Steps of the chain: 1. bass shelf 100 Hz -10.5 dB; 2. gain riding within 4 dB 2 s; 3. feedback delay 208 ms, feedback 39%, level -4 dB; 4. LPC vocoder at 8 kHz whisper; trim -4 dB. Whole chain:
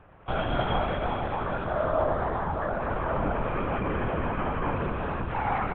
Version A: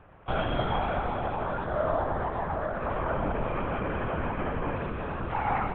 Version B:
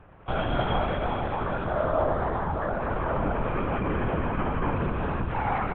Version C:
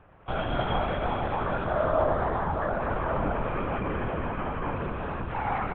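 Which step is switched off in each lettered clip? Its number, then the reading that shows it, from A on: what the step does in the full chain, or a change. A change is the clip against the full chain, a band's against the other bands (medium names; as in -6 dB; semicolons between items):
3, loudness change -1.5 LU; 1, 125 Hz band +2.0 dB; 2, momentary loudness spread change +3 LU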